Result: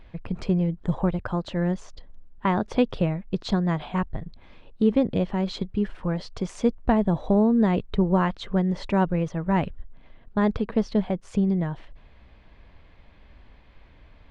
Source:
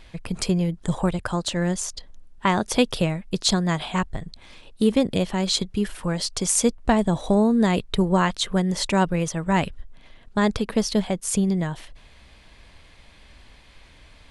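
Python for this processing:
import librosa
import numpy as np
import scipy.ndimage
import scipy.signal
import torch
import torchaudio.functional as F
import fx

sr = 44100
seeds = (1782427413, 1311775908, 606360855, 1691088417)

y = fx.spacing_loss(x, sr, db_at_10k=34)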